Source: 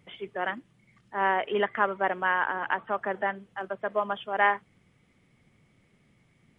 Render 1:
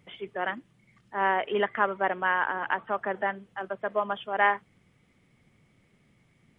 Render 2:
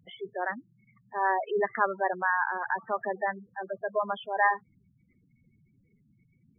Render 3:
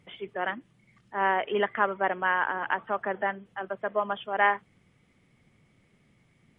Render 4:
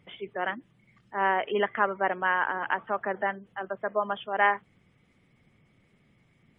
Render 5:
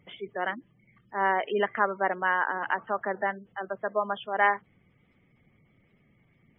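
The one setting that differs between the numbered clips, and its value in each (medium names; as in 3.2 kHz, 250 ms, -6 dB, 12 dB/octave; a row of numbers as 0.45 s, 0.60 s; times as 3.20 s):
spectral gate, under each frame's peak: -60 dB, -10 dB, -45 dB, -35 dB, -25 dB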